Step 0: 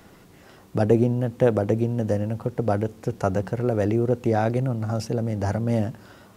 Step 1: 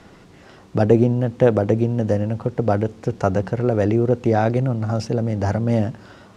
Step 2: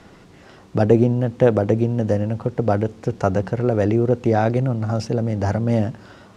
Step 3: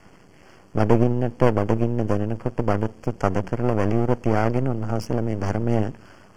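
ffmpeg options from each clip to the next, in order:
-af "lowpass=6600,volume=1.58"
-af anull
-af "aeval=exprs='max(val(0),0)':c=same,asuperstop=centerf=3800:order=8:qfactor=3.6"

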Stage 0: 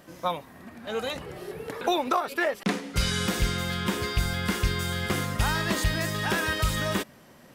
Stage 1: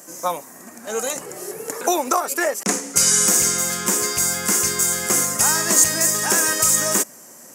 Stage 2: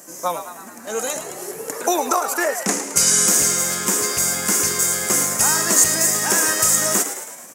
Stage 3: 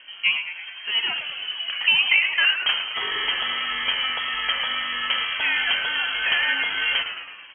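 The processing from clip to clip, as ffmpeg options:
-af "highpass=250,highshelf=f=5000:t=q:w=3:g=12,volume=1.88"
-filter_complex "[0:a]asplit=8[s0][s1][s2][s3][s4][s5][s6][s7];[s1]adelay=108,afreqshift=88,volume=0.316[s8];[s2]adelay=216,afreqshift=176,volume=0.184[s9];[s3]adelay=324,afreqshift=264,volume=0.106[s10];[s4]adelay=432,afreqshift=352,volume=0.0617[s11];[s5]adelay=540,afreqshift=440,volume=0.0359[s12];[s6]adelay=648,afreqshift=528,volume=0.0207[s13];[s7]adelay=756,afreqshift=616,volume=0.012[s14];[s0][s8][s9][s10][s11][s12][s13][s14]amix=inputs=8:normalize=0"
-filter_complex "[0:a]asplit=2[s0][s1];[s1]asoftclip=type=tanh:threshold=0.168,volume=0.473[s2];[s0][s2]amix=inputs=2:normalize=0,lowpass=f=2900:t=q:w=0.5098,lowpass=f=2900:t=q:w=0.6013,lowpass=f=2900:t=q:w=0.9,lowpass=f=2900:t=q:w=2.563,afreqshift=-3400,volume=0.891"

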